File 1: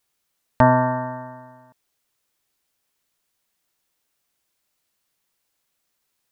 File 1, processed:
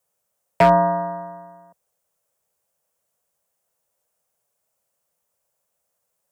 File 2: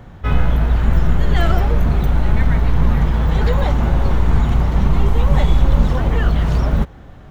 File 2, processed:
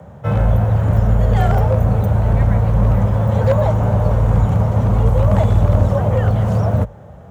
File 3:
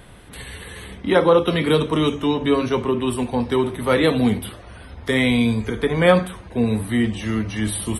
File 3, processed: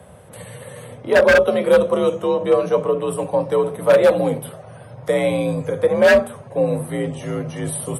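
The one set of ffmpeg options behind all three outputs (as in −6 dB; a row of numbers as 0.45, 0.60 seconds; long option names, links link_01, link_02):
-af "equalizer=frequency=125:width_type=o:width=1:gain=3,equalizer=frequency=250:width_type=o:width=1:gain=-11,equalizer=frequency=500:width_type=o:width=1:gain=12,equalizer=frequency=2000:width_type=o:width=1:gain=-5,equalizer=frequency=4000:width_type=o:width=1:gain=-9,equalizer=frequency=8000:width_type=o:width=1:gain=3,aeval=exprs='0.562*(abs(mod(val(0)/0.562+3,4)-2)-1)':channel_layout=same,afreqshift=51,volume=-1dB"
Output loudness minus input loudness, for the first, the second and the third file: +1.5, +2.0, +2.0 LU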